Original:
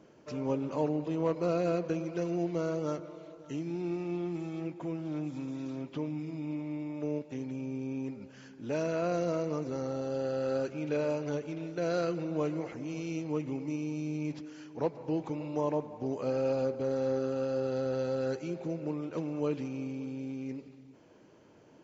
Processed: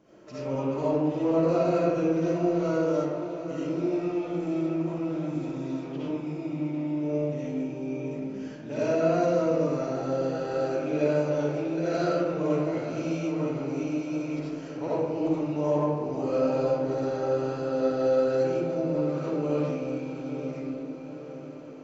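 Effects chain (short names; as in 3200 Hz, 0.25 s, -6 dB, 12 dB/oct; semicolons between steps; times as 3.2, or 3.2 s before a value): diffused feedback echo 0.889 s, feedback 59%, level -11 dB; digital reverb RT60 1.3 s, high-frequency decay 0.4×, pre-delay 30 ms, DRR -9.5 dB; gain -4.5 dB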